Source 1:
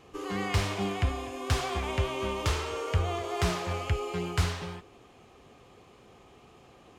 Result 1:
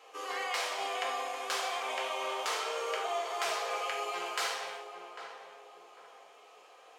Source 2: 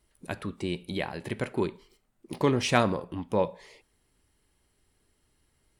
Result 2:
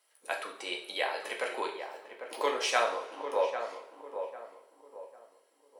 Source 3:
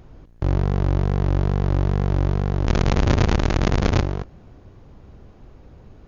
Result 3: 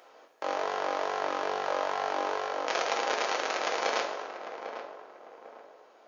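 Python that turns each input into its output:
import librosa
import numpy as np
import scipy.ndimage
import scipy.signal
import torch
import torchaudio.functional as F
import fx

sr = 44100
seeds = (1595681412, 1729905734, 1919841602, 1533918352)

p1 = scipy.signal.sosfilt(scipy.signal.butter(4, 520.0, 'highpass', fs=sr, output='sos'), x)
p2 = fx.rider(p1, sr, range_db=3, speed_s=0.5)
p3 = p2 + fx.echo_filtered(p2, sr, ms=798, feedback_pct=38, hz=1200.0, wet_db=-7.5, dry=0)
p4 = fx.rev_double_slope(p3, sr, seeds[0], early_s=0.48, late_s=1.9, knee_db=-18, drr_db=0.5)
y = F.gain(torch.from_numpy(p4), -2.0).numpy()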